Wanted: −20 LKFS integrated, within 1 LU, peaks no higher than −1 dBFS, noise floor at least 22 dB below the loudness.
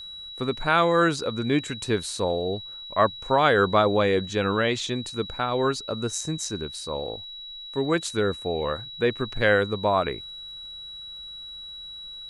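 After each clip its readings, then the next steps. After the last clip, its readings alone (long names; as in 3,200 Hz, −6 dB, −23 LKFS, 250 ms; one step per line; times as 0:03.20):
crackle rate 53 per second; interfering tone 3,900 Hz; level of the tone −37 dBFS; integrated loudness −25.0 LKFS; sample peak −6.5 dBFS; target loudness −20.0 LKFS
→ click removal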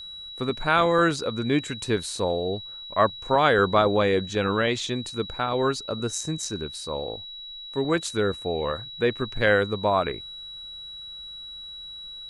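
crackle rate 0.16 per second; interfering tone 3,900 Hz; level of the tone −37 dBFS
→ notch filter 3,900 Hz, Q 30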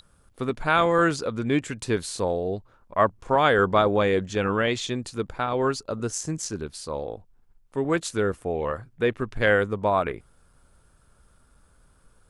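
interfering tone none found; integrated loudness −25.0 LKFS; sample peak −7.0 dBFS; target loudness −20.0 LKFS
→ level +5 dB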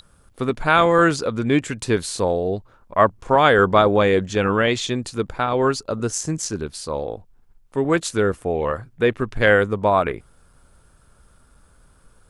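integrated loudness −20.0 LKFS; sample peak −2.0 dBFS; background noise floor −55 dBFS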